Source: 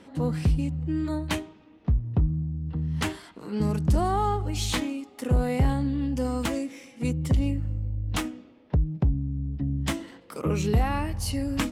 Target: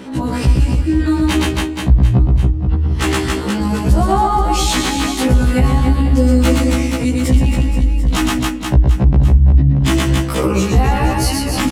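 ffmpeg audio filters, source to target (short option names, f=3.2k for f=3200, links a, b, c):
-filter_complex "[0:a]asplit=2[a][b];[b]aecho=0:1:120|276|478.8|742.4|1085:0.631|0.398|0.251|0.158|0.1[c];[a][c]amix=inputs=2:normalize=0,alimiter=level_in=21.5dB:limit=-1dB:release=50:level=0:latency=1,afftfilt=real='re*1.73*eq(mod(b,3),0)':imag='im*1.73*eq(mod(b,3),0)':win_size=2048:overlap=0.75,volume=-2.5dB"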